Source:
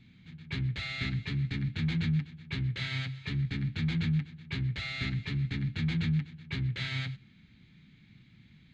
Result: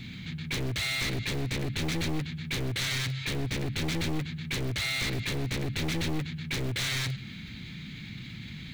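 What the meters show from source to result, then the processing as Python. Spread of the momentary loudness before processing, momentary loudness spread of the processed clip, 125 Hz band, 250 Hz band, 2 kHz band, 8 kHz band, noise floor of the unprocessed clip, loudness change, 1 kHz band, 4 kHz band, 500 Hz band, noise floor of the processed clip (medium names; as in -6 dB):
8 LU, 12 LU, -1.5 dB, +0.5 dB, +5.0 dB, no reading, -59 dBFS, +1.0 dB, +9.0 dB, +7.5 dB, +14.0 dB, -42 dBFS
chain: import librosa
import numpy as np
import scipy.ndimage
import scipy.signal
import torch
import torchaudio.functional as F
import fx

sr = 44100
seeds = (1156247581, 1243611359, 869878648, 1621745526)

p1 = np.minimum(x, 2.0 * 10.0 ** (-33.5 / 20.0) - x)
p2 = fx.high_shelf(p1, sr, hz=3100.0, db=9.0)
p3 = (np.mod(10.0 ** (30.5 / 20.0) * p2 + 1.0, 2.0) - 1.0) / 10.0 ** (30.5 / 20.0)
p4 = p2 + (p3 * librosa.db_to_amplitude(-11.5))
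y = fx.env_flatten(p4, sr, amount_pct=50)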